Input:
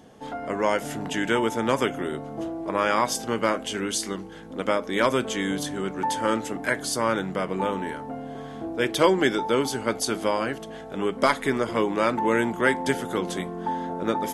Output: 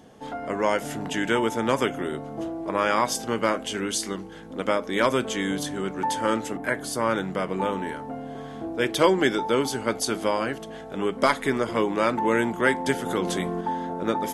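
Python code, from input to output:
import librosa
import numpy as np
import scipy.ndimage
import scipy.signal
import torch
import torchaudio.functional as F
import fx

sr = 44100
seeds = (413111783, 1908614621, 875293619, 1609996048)

y = fx.peak_eq(x, sr, hz=5400.0, db=fx.line((6.56, -10.0), (7.1, -3.5)), octaves=1.8, at=(6.56, 7.1), fade=0.02)
y = fx.env_flatten(y, sr, amount_pct=50, at=(13.06, 13.61))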